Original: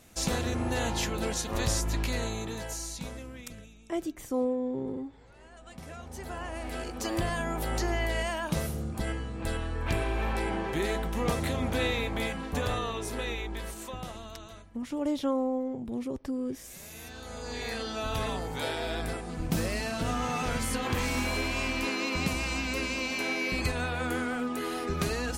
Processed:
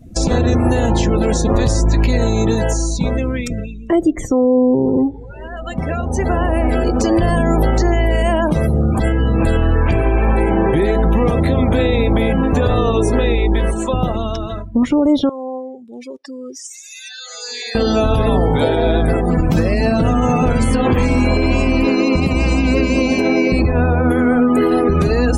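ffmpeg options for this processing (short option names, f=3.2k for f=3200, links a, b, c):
-filter_complex "[0:a]asettb=1/sr,asplit=3[a][b][c];[a]atrim=end=15.294[d];[b]atrim=start=15.29:end=17.75,asetpts=PTS-STARTPTS,afade=t=in:d=0.004:c=qsin,afade=t=out:st=2.456:d=0.004:c=qsin,bandpass=f=6k:t=q:w=0.61[e];[c]atrim=start=17.746[f];[d][e]acrossfade=d=0.004:c1=hsin:c2=qsin[g];[g][f]acrossfade=d=0.004:c1=qsin:c2=hsin,asettb=1/sr,asplit=3[h][i][j];[h]atrim=end=23.624[k];[i]atrim=start=23.62:end=24.11,asetpts=PTS-STARTPTS,afade=t=in:d=0.004:c=qsin,afade=t=out:st=0.486:d=0.004:c=qsin,lowpass=f=1.2k:p=1[l];[j]atrim=start=24.106[m];[k][l]acrossfade=d=0.004:c1=hsin:c2=qsin[n];[n][m]acrossfade=d=0.004:c1=qsin:c2=hsin,acrossover=split=650|7900[o][p][q];[o]acompressor=threshold=-34dB:ratio=4[r];[p]acompressor=threshold=-49dB:ratio=4[s];[q]acompressor=threshold=-58dB:ratio=4[t];[r][s][t]amix=inputs=3:normalize=0,afftdn=nr=31:nf=-50,alimiter=level_in=29dB:limit=-1dB:release=50:level=0:latency=1,volume=-5dB"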